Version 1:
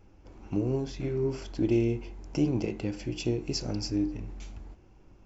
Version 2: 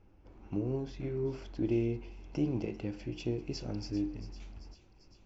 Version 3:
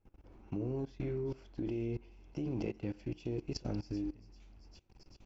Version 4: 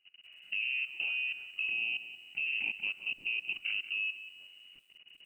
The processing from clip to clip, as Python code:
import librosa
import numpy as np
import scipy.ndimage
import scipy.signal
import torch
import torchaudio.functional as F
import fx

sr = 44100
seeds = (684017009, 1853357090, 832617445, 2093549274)

y1 = fx.air_absorb(x, sr, metres=120.0)
y1 = fx.echo_wet_highpass(y1, sr, ms=393, feedback_pct=65, hz=2600.0, wet_db=-12.0)
y1 = y1 * librosa.db_to_amplitude(-5.0)
y2 = fx.level_steps(y1, sr, step_db=20)
y2 = y2 * librosa.db_to_amplitude(4.0)
y3 = fx.peak_eq(y2, sr, hz=270.0, db=4.5, octaves=2.6)
y3 = fx.freq_invert(y3, sr, carrier_hz=2900)
y3 = fx.echo_crushed(y3, sr, ms=182, feedback_pct=35, bits=10, wet_db=-12.5)
y3 = y3 * librosa.db_to_amplitude(-1.5)